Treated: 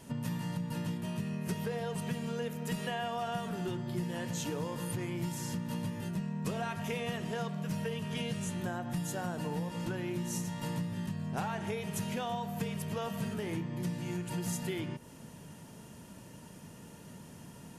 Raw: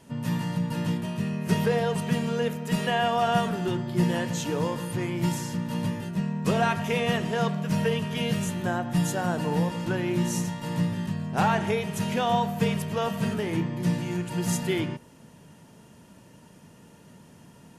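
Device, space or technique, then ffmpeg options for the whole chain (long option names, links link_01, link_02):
ASMR close-microphone chain: -filter_complex "[0:a]asettb=1/sr,asplit=3[link_01][link_02][link_03];[link_01]atrim=end=8.114[link_04];[link_02]atrim=start=8.11:end=8.61,asetpts=PTS-STARTPTS,afade=type=in:duration=0.004:curve=qsin,afade=type=out:start_time=0.496:duration=0.004:curve=qsin,lowpass=frequency=11000:width=0.5412,lowpass=frequency=11000:width=1.3066[link_05];[link_03]atrim=start=8.606[link_06];[link_04][link_05]acrossfade=duration=0.004:curve1=hsin:curve2=qsin[link_07];[link_07][link_06]acrossfade=duration=0.004:curve1=qsin:curve2=hsin,lowshelf=frequency=140:gain=3,acompressor=threshold=-34dB:ratio=5,highshelf=frequency=7000:gain=6"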